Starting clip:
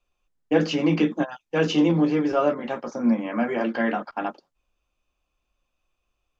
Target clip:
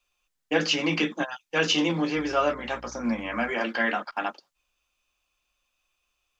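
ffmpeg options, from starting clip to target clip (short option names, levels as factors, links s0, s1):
-filter_complex "[0:a]asettb=1/sr,asplit=3[s0][s1][s2];[s0]atrim=end=2.164[s3];[s1]atrim=start=2.16:end=3.51,asetpts=PTS-STARTPTS,afade=t=in:d=0.004:c=qsin,afade=t=out:st=1.346:d=0.004:c=qsin,aeval=exprs='val(0)+0.0112*(sin(2*PI*60*n/s)+sin(2*PI*2*60*n/s)/2+sin(2*PI*3*60*n/s)/3+sin(2*PI*4*60*n/s)/4+sin(2*PI*5*60*n/s)/5)':c=same[s4];[s2]atrim=start=3.506[s5];[s3][s4]acrossfade=d=0.004:c1=hsin:c2=qsin[s6];[s6][s5]acrossfade=d=0.004:c1=qsin:c2=hsin,tiltshelf=f=970:g=-8"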